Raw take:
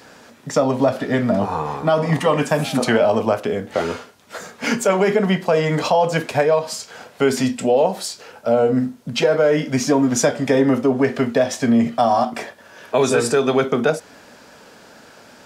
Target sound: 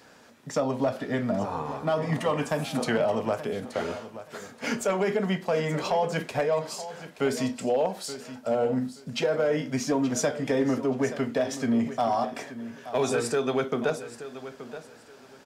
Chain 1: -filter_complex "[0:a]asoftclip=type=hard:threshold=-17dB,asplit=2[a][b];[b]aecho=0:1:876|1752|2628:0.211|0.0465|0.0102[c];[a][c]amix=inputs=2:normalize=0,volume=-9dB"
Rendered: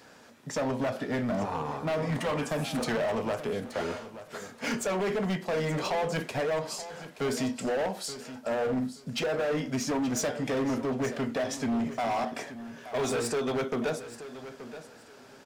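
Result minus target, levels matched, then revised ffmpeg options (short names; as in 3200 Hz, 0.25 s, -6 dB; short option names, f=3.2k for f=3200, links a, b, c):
hard clip: distortion +18 dB
-filter_complex "[0:a]asoftclip=type=hard:threshold=-8.5dB,asplit=2[a][b];[b]aecho=0:1:876|1752|2628:0.211|0.0465|0.0102[c];[a][c]amix=inputs=2:normalize=0,volume=-9dB"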